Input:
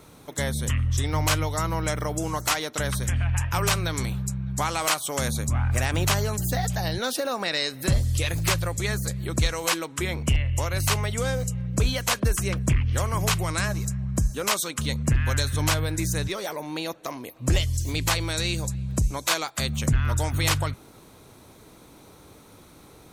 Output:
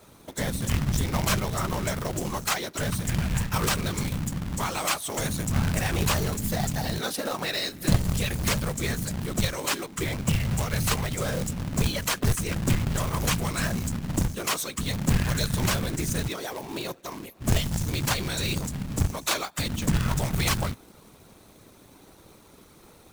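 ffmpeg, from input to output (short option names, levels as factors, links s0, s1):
-af "afftfilt=real='hypot(re,im)*cos(2*PI*random(0))':imag='hypot(re,im)*sin(2*PI*random(1))':win_size=512:overlap=0.75,adynamicequalizer=threshold=0.00501:dfrequency=160:dqfactor=1.5:tfrequency=160:tqfactor=1.5:attack=5:release=100:ratio=0.375:range=1.5:mode=boostabove:tftype=bell,acrusher=bits=2:mode=log:mix=0:aa=0.000001,volume=1.41"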